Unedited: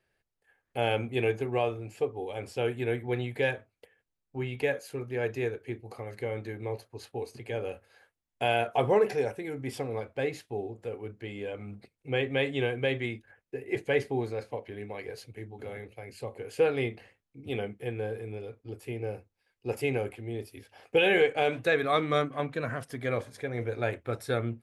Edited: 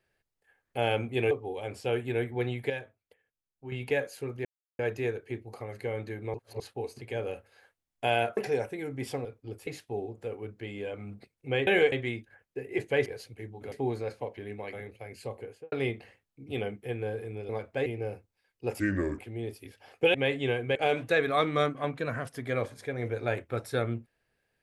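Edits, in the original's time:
1.31–2.03 s: delete
3.42–4.44 s: gain -8 dB
5.17 s: insert silence 0.34 s
6.72–6.98 s: reverse
8.75–9.03 s: delete
9.91–10.28 s: swap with 18.46–18.88 s
12.28–12.89 s: swap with 21.06–21.31 s
15.04–15.70 s: move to 14.03 s
16.31–16.69 s: studio fade out
19.82–20.10 s: speed 73%

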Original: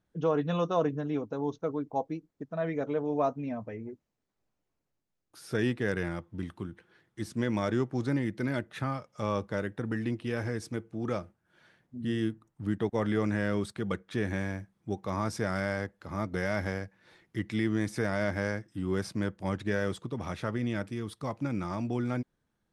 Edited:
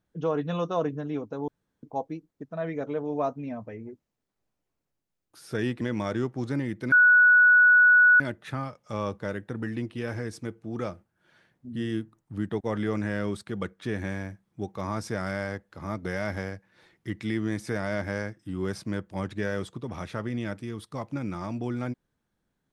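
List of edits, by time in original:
1.48–1.83 s: room tone
5.81–7.38 s: delete
8.49 s: add tone 1.47 kHz -13.5 dBFS 1.28 s

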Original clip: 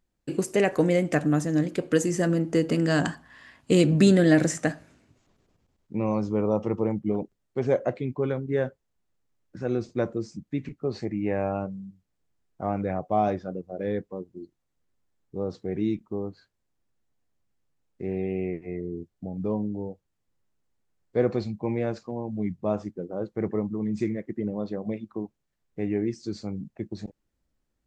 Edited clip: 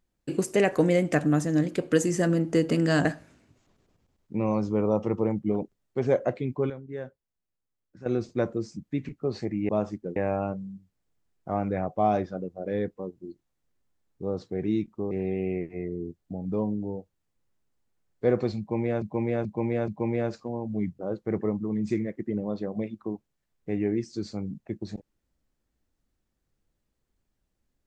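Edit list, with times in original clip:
3.05–4.65 s: delete
8.30–9.66 s: gain -10.5 dB
16.24–18.03 s: delete
21.51–21.94 s: loop, 4 plays
22.62–23.09 s: move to 11.29 s

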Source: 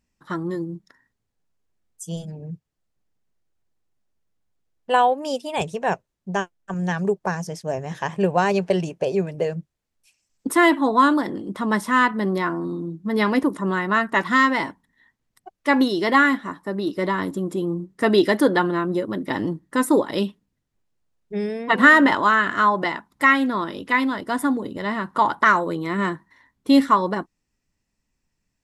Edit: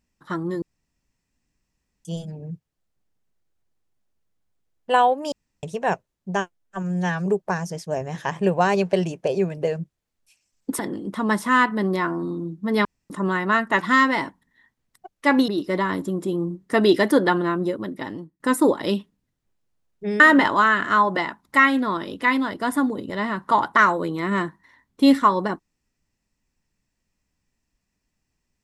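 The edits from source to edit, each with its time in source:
0.62–2.05 s: room tone
5.32–5.63 s: room tone
6.57–7.03 s: stretch 1.5×
10.56–11.21 s: delete
13.27–13.52 s: room tone
15.90–16.77 s: delete
18.88–19.69 s: fade out, to -22.5 dB
21.49–21.87 s: delete

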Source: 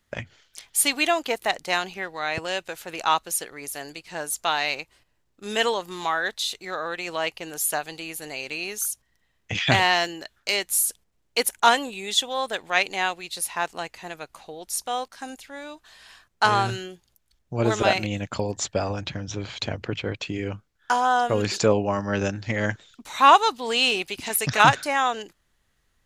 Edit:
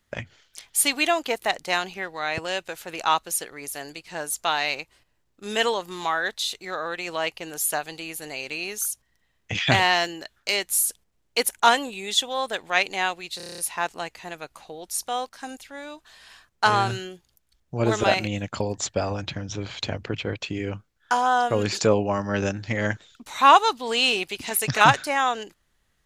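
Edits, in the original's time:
13.37 s: stutter 0.03 s, 8 plays

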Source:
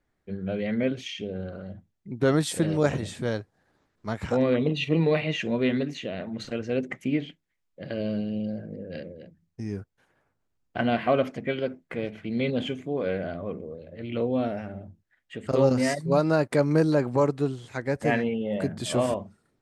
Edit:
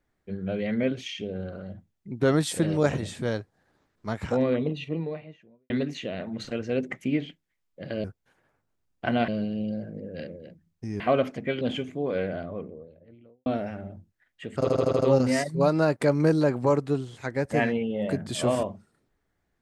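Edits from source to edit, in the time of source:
4.08–5.70 s: studio fade out
9.76–11.00 s: move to 8.04 s
11.61–12.52 s: delete
13.11–14.37 s: studio fade out
15.50 s: stutter 0.08 s, 6 plays

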